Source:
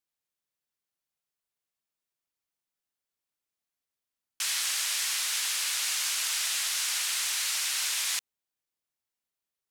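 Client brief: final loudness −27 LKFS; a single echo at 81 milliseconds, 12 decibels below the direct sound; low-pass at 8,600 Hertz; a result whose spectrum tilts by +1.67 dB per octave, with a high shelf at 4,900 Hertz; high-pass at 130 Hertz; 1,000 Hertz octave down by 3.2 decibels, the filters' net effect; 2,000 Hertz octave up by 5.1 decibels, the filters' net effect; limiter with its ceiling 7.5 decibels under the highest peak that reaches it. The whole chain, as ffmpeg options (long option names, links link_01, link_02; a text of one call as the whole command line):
ffmpeg -i in.wav -af "highpass=130,lowpass=8600,equalizer=frequency=1000:width_type=o:gain=-8.5,equalizer=frequency=2000:width_type=o:gain=7,highshelf=frequency=4900:gain=6.5,alimiter=limit=-21dB:level=0:latency=1,aecho=1:1:81:0.251,volume=0.5dB" out.wav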